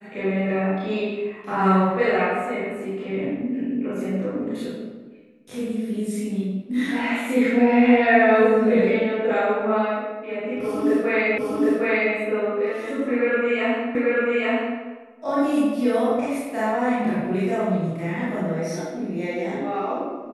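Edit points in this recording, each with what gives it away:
0:11.38: the same again, the last 0.76 s
0:13.95: the same again, the last 0.84 s

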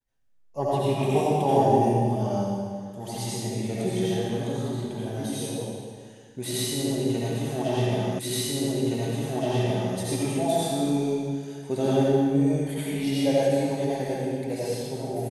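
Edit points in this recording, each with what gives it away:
0:08.19: the same again, the last 1.77 s

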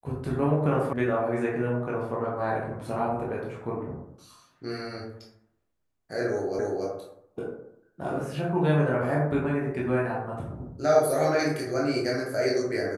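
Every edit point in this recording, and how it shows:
0:00.93: cut off before it has died away
0:06.59: the same again, the last 0.28 s

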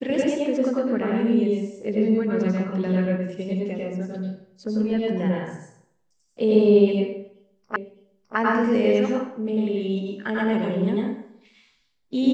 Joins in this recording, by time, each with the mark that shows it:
0:07.76: the same again, the last 0.61 s

